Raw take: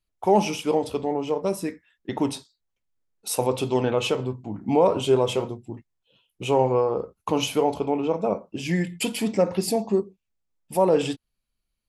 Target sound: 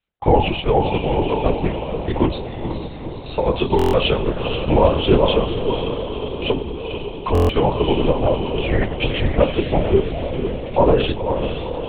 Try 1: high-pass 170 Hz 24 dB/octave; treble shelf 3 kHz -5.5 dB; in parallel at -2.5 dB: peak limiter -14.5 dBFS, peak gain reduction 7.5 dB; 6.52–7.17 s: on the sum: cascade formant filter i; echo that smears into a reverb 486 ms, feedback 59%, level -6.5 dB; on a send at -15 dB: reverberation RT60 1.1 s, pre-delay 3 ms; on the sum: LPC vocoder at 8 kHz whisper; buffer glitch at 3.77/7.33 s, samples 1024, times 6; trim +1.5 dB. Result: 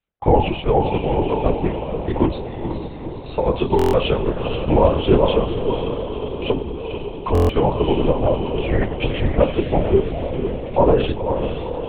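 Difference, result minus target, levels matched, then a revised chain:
4 kHz band -4.5 dB
high-pass 170 Hz 24 dB/octave; treble shelf 3 kHz +4.5 dB; in parallel at -2.5 dB: peak limiter -14.5 dBFS, peak gain reduction 8 dB; 6.52–7.17 s: on the sum: cascade formant filter i; echo that smears into a reverb 486 ms, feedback 59%, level -6.5 dB; on a send at -15 dB: reverberation RT60 1.1 s, pre-delay 3 ms; on the sum: LPC vocoder at 8 kHz whisper; buffer glitch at 3.77/7.33 s, samples 1024, times 6; trim +1.5 dB

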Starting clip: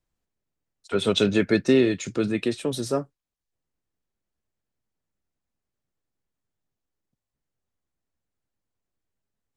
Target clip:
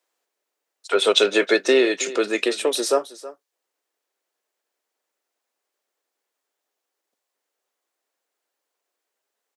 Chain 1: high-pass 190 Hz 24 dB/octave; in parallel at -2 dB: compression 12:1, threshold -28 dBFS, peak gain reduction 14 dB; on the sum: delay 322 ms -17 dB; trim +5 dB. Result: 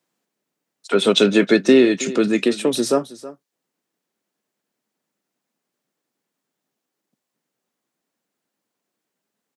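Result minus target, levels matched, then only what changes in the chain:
250 Hz band +6.5 dB
change: high-pass 410 Hz 24 dB/octave

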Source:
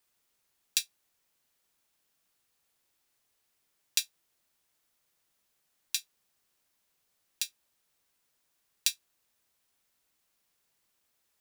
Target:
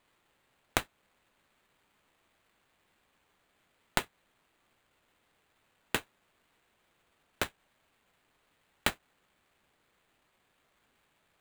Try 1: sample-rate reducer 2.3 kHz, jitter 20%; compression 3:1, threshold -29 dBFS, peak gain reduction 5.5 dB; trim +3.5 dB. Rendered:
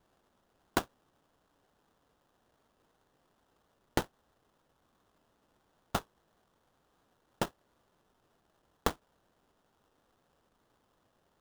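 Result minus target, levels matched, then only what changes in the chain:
sample-rate reducer: distortion +20 dB
change: sample-rate reducer 5.6 kHz, jitter 20%

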